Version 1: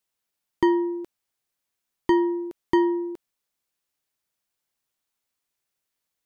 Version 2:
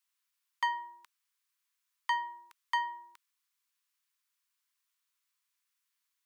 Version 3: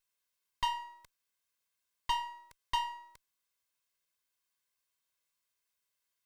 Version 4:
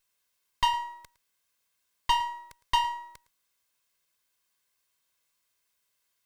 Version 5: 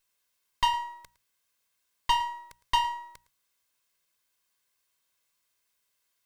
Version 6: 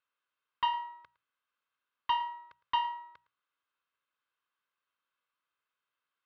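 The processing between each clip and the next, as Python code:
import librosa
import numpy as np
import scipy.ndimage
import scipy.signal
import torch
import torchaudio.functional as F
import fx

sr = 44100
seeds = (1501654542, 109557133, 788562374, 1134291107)

y1 = scipy.signal.sosfilt(scipy.signal.ellip(4, 1.0, 40, 1000.0, 'highpass', fs=sr, output='sos'), x)
y2 = fx.lower_of_two(y1, sr, delay_ms=1.9)
y3 = y2 + 10.0 ** (-19.5 / 20.0) * np.pad(y2, (int(110 * sr / 1000.0), 0))[:len(y2)]
y3 = y3 * 10.0 ** (7.5 / 20.0)
y4 = fx.hum_notches(y3, sr, base_hz=60, count=3)
y5 = fx.cabinet(y4, sr, low_hz=140.0, low_slope=12, high_hz=3200.0, hz=(150.0, 210.0, 380.0, 680.0, 1300.0, 2100.0), db=(-6, -7, -5, -5, 10, -5))
y5 = y5 * 10.0 ** (-5.0 / 20.0)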